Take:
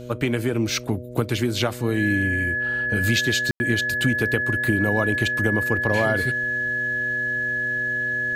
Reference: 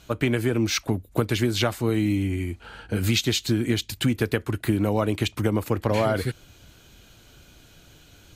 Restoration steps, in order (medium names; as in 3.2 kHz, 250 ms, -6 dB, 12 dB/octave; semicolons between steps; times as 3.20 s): de-hum 122.7 Hz, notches 5; band-stop 1.7 kHz, Q 30; room tone fill 3.51–3.60 s